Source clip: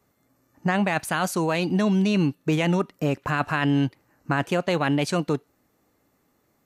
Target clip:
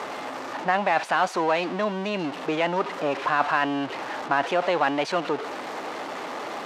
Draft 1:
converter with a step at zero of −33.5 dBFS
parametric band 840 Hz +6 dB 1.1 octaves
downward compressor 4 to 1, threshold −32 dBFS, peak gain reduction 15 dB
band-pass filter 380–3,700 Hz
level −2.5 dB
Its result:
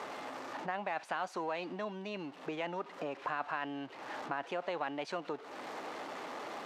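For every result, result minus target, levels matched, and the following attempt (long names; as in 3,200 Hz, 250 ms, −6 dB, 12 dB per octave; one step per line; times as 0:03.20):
downward compressor: peak gain reduction +15 dB; converter with a step at zero: distortion −8 dB
converter with a step at zero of −33.5 dBFS
band-pass filter 380–3,700 Hz
parametric band 840 Hz +6 dB 1.1 octaves
level −2.5 dB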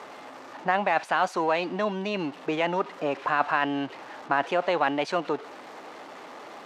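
converter with a step at zero: distortion −8 dB
converter with a step at zero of −23.5 dBFS
band-pass filter 380–3,700 Hz
parametric band 840 Hz +6 dB 1.1 octaves
level −2.5 dB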